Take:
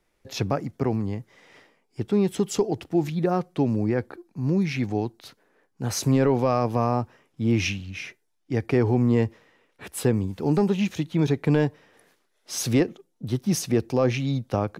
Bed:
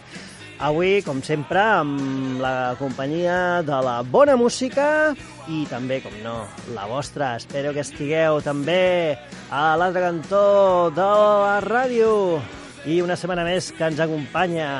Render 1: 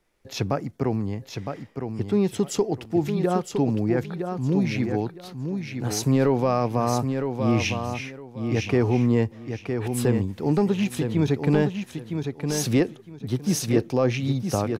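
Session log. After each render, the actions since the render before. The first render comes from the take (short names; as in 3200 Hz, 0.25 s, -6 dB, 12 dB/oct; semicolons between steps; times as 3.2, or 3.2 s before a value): feedback echo 0.961 s, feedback 21%, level -6.5 dB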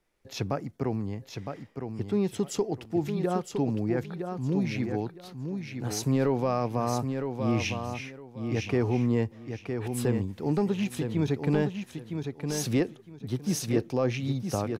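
gain -5 dB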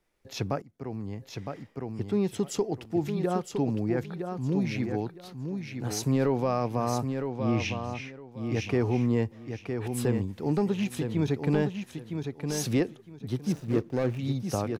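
0.62–1.28 fade in, from -21 dB; 7.3–8.32 air absorption 61 m; 13.52–14.19 median filter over 41 samples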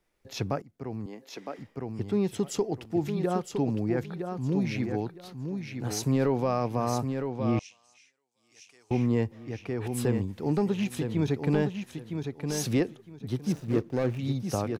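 1.06–1.59 HPF 240 Hz 24 dB/oct; 7.59–8.91 band-pass 8000 Hz, Q 2.9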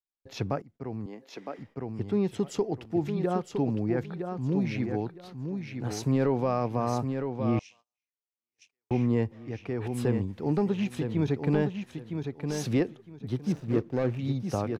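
gate -52 dBFS, range -33 dB; high shelf 6000 Hz -11.5 dB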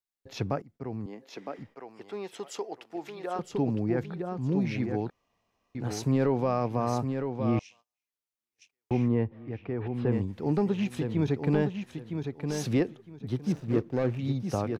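1.75–3.39 HPF 590 Hz; 5.1–5.75 room tone; 9.08–10.12 air absorption 320 m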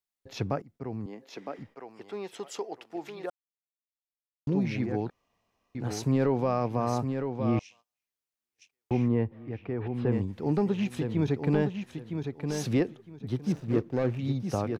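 3.3–4.47 mute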